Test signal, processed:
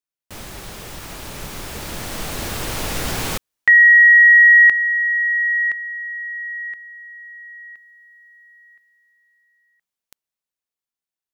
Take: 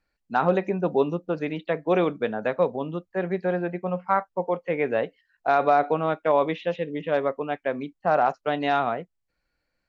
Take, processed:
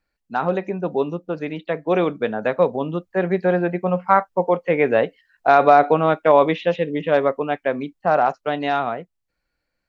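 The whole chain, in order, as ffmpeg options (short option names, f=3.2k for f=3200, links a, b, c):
-af "dynaudnorm=f=290:g=17:m=13dB"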